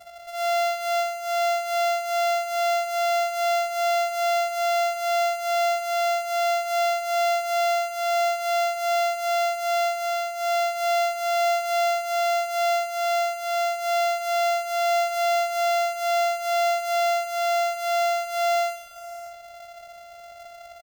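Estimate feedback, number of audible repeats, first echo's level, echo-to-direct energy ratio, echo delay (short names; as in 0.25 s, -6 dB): no steady repeat, 4, -4.5 dB, -3.5 dB, 61 ms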